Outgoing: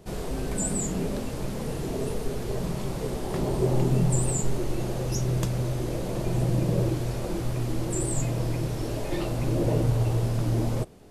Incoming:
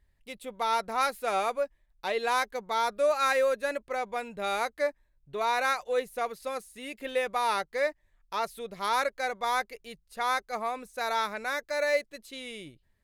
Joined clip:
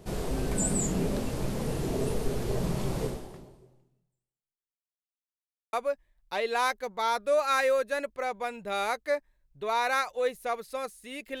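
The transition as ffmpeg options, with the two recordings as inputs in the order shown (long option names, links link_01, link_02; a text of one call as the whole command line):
ffmpeg -i cue0.wav -i cue1.wav -filter_complex "[0:a]apad=whole_dur=11.4,atrim=end=11.4,asplit=2[link_01][link_02];[link_01]atrim=end=4.83,asetpts=PTS-STARTPTS,afade=type=out:start_time=3.04:duration=1.79:curve=exp[link_03];[link_02]atrim=start=4.83:end=5.73,asetpts=PTS-STARTPTS,volume=0[link_04];[1:a]atrim=start=1.45:end=7.12,asetpts=PTS-STARTPTS,afade=type=in:duration=0.004:curve=hsin[link_05];[link_03][link_04][link_05]concat=n=3:v=0:a=1" out.wav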